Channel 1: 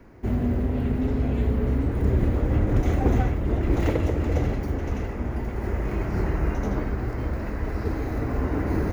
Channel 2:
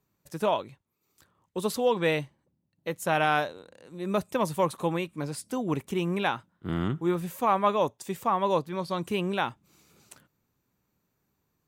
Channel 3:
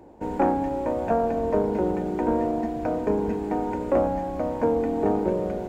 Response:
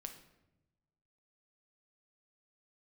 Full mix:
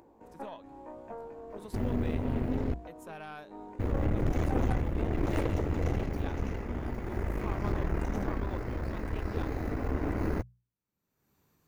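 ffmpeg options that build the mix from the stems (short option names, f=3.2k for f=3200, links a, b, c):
-filter_complex "[0:a]adelay=1500,volume=-2dB,asplit=3[a][b][c];[a]atrim=end=2.74,asetpts=PTS-STARTPTS,afade=t=out:st=2.736:d=0.004:c=hsin[d];[b]atrim=start=2.74:end=3.79,asetpts=PTS-STARTPTS,volume=0[e];[c]atrim=start=3.79,asetpts=PTS-STARTPTS,afade=t=in:d=0.004:c=hsin[f];[d][e][f]concat=n=3:v=0:a=1[g];[1:a]volume=-15.5dB,asplit=2[h][i];[2:a]flanger=delay=17.5:depth=2.2:speed=0.45,equalizer=f=1.1k:w=4.1:g=8,volume=-13.5dB[j];[i]apad=whole_len=250869[k];[j][k]sidechaincompress=threshold=-47dB:ratio=8:attack=16:release=223[l];[g][h][l]amix=inputs=3:normalize=0,bandreject=f=60:t=h:w=6,bandreject=f=120:t=h:w=6,bandreject=f=180:t=h:w=6,acompressor=mode=upward:threshold=-46dB:ratio=2.5,aeval=exprs='(tanh(14.1*val(0)+0.7)-tanh(0.7))/14.1':c=same"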